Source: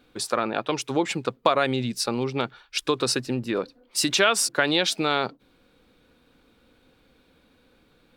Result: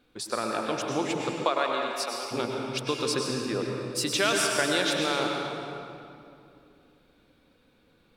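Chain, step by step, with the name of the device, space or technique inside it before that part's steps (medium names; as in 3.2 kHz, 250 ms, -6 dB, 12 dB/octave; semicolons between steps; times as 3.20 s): stairwell (reverberation RT60 2.6 s, pre-delay 95 ms, DRR 0 dB); 1.44–2.30 s: high-pass 330 Hz -> 730 Hz 12 dB/octave; trim -6 dB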